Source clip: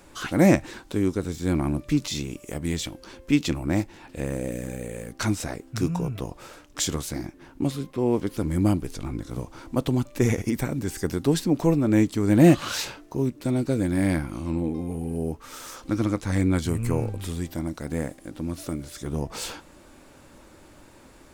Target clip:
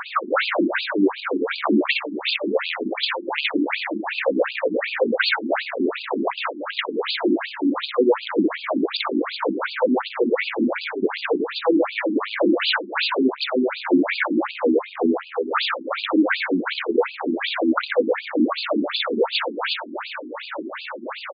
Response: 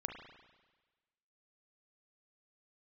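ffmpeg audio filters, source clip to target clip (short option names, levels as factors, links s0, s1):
-filter_complex "[0:a]acompressor=threshold=0.0447:ratio=6,aphaser=in_gain=1:out_gain=1:delay=2.3:decay=0.61:speed=1.8:type=sinusoidal,asplit=2[s0][s1];[s1]aecho=0:1:60|126|198.6|278.5|366.3:0.631|0.398|0.251|0.158|0.1[s2];[s0][s2]amix=inputs=2:normalize=0,asplit=2[s3][s4];[s4]highpass=f=720:p=1,volume=25.1,asoftclip=type=tanh:threshold=0.335[s5];[s3][s5]amix=inputs=2:normalize=0,lowpass=f=7500:p=1,volume=0.501,afftfilt=real='re*between(b*sr/1024,260*pow(3500/260,0.5+0.5*sin(2*PI*2.7*pts/sr))/1.41,260*pow(3500/260,0.5+0.5*sin(2*PI*2.7*pts/sr))*1.41)':imag='im*between(b*sr/1024,260*pow(3500/260,0.5+0.5*sin(2*PI*2.7*pts/sr))/1.41,260*pow(3500/260,0.5+0.5*sin(2*PI*2.7*pts/sr))*1.41)':win_size=1024:overlap=0.75,volume=1.68"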